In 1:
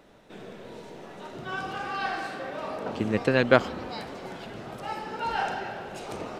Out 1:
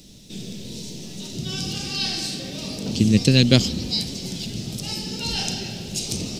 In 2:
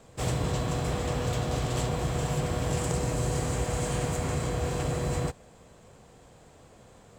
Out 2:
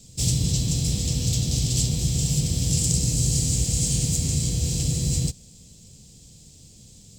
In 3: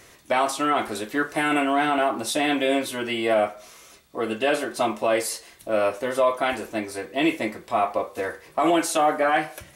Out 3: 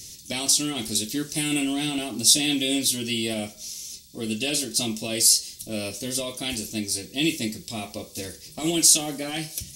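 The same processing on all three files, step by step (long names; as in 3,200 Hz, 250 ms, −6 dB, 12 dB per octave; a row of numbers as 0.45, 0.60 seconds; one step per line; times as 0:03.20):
drawn EQ curve 190 Hz 0 dB, 630 Hz −21 dB, 1,100 Hz −27 dB, 1,500 Hz −26 dB, 2,600 Hz −7 dB, 5,200 Hz +10 dB, 10,000 Hz +5 dB
loudness normalisation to −23 LKFS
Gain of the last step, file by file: +14.0, +7.0, +6.5 decibels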